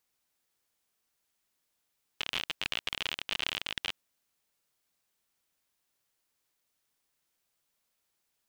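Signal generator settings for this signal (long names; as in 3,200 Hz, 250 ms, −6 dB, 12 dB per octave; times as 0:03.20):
Geiger counter clicks 54 per second −16 dBFS 1.72 s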